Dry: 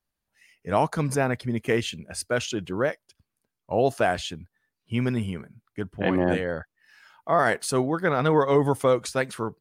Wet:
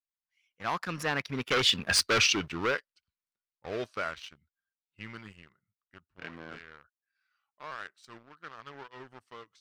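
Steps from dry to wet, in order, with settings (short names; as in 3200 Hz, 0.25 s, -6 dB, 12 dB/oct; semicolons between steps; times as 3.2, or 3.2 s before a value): Doppler pass-by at 1.95, 36 m/s, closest 5.3 m; dynamic EQ 420 Hz, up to +6 dB, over -46 dBFS, Q 2.7; sample leveller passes 2; hard clip -25 dBFS, distortion -10 dB; band shelf 2500 Hz +11.5 dB 2.8 oct; gain -2 dB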